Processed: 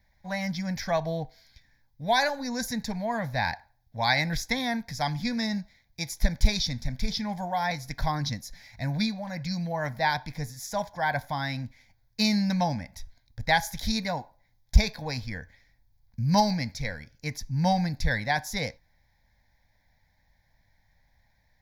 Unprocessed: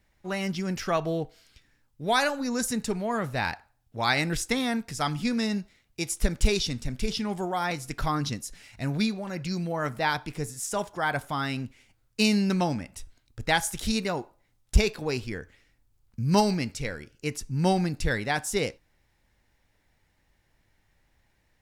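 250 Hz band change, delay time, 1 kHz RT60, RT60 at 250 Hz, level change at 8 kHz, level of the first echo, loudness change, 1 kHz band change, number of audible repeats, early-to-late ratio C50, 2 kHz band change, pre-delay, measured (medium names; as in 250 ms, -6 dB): -1.5 dB, no echo, no reverb, no reverb, -4.5 dB, no echo, -0.5 dB, +1.0 dB, no echo, no reverb, +0.5 dB, no reverb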